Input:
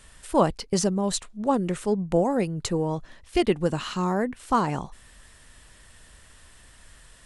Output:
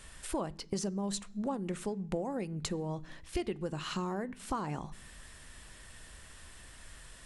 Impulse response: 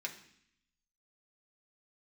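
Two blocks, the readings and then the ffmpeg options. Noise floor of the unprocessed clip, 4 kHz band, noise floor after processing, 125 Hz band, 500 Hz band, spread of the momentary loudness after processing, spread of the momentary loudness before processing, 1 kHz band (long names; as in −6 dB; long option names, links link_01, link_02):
−53 dBFS, −8.5 dB, −53 dBFS, −10.0 dB, −13.0 dB, 16 LU, 6 LU, −13.0 dB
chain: -filter_complex "[0:a]acompressor=threshold=-33dB:ratio=6,asplit=2[link_01][link_02];[1:a]atrim=start_sample=2205,lowshelf=frequency=270:gain=11[link_03];[link_02][link_03]afir=irnorm=-1:irlink=0,volume=-12dB[link_04];[link_01][link_04]amix=inputs=2:normalize=0,volume=-1.5dB"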